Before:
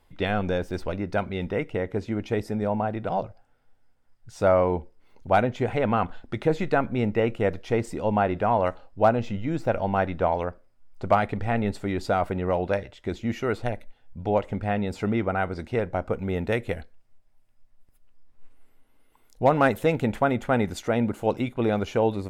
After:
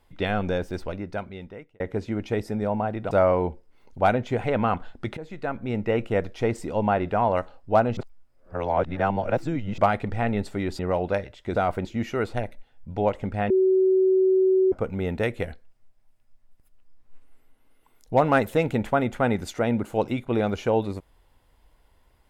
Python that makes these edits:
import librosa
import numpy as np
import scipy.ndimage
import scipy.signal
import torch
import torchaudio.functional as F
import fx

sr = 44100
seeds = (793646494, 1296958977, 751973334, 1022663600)

y = fx.edit(x, sr, fx.fade_out_span(start_s=0.62, length_s=1.18),
    fx.cut(start_s=3.11, length_s=1.29),
    fx.fade_in_from(start_s=6.46, length_s=0.83, floor_db=-18.5),
    fx.reverse_span(start_s=9.26, length_s=1.81),
    fx.move(start_s=12.08, length_s=0.3, to_s=13.14),
    fx.bleep(start_s=14.79, length_s=1.22, hz=377.0, db=-16.0), tone=tone)